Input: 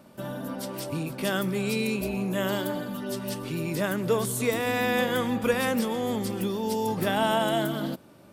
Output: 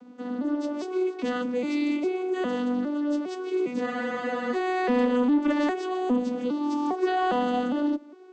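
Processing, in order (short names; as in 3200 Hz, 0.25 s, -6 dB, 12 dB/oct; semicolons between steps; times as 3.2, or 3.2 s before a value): arpeggiated vocoder minor triad, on B3, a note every 0.406 s; added harmonics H 5 -19 dB, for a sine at -13 dBFS; spectral freeze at 3.87, 0.67 s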